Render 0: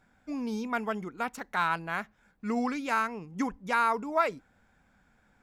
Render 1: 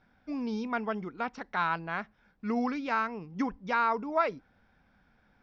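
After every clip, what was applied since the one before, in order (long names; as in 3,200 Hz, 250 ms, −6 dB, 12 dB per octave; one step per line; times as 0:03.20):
Chebyshev low-pass filter 5,600 Hz, order 5
dynamic equaliser 3,600 Hz, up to −3 dB, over −45 dBFS, Q 0.82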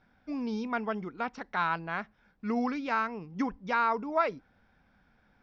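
no processing that can be heard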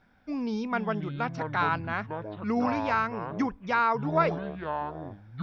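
delay with pitch and tempo change per echo 304 ms, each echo −7 semitones, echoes 2, each echo −6 dB
level +2.5 dB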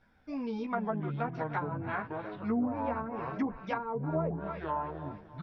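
multi-voice chorus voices 4, 0.66 Hz, delay 14 ms, depth 1.6 ms
repeating echo 302 ms, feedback 45%, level −15.5 dB
treble cut that deepens with the level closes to 510 Hz, closed at −25 dBFS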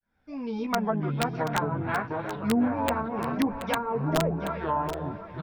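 fade in at the beginning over 0.70 s
wrap-around overflow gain 21.5 dB
single-tap delay 729 ms −11 dB
level +6 dB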